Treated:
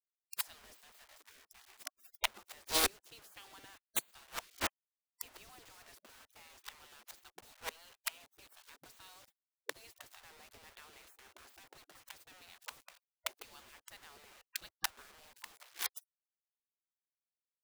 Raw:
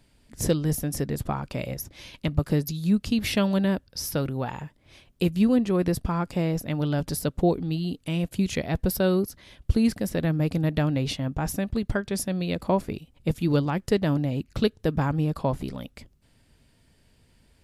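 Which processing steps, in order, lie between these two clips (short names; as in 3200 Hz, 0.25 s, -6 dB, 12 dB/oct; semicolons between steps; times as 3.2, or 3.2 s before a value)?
bit-crush 6-bit; flipped gate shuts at -21 dBFS, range -33 dB; spectral gate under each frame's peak -20 dB weak; gain +13 dB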